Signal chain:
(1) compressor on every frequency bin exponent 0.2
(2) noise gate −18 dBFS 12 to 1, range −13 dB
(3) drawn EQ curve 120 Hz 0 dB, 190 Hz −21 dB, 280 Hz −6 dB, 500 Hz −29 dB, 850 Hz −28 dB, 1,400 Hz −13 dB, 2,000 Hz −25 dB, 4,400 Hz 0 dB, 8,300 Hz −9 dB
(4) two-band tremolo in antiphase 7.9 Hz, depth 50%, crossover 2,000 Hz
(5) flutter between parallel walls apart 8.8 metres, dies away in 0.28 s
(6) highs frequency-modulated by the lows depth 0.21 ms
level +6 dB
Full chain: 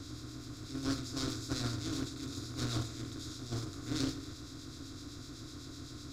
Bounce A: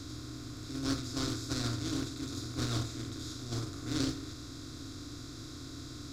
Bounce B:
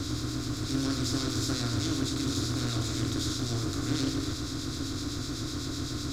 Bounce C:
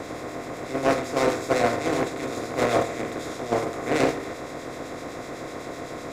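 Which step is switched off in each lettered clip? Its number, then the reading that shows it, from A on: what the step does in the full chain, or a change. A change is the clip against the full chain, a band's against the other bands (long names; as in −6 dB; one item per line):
4, change in crest factor −2.0 dB
2, change in momentary loudness spread −6 LU
3, 500 Hz band +16.0 dB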